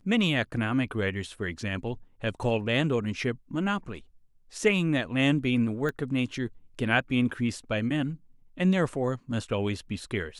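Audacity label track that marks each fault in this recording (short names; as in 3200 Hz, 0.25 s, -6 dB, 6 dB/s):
5.890000	5.890000	pop -20 dBFS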